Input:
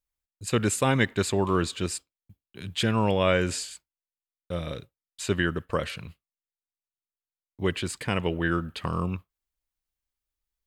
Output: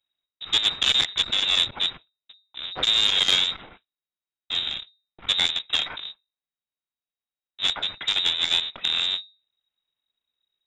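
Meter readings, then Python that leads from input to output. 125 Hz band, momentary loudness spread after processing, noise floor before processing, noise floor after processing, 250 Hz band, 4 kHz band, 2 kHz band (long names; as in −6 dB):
−19.5 dB, 15 LU, below −85 dBFS, below −85 dBFS, −18.0 dB, +17.0 dB, +1.0 dB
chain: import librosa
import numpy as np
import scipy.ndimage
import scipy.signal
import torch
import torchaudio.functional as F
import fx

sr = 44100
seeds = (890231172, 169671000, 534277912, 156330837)

y = fx.halfwave_hold(x, sr)
y = fx.hum_notches(y, sr, base_hz=50, count=2)
y = fx.freq_invert(y, sr, carrier_hz=3800)
y = fx.transformer_sat(y, sr, knee_hz=2600.0)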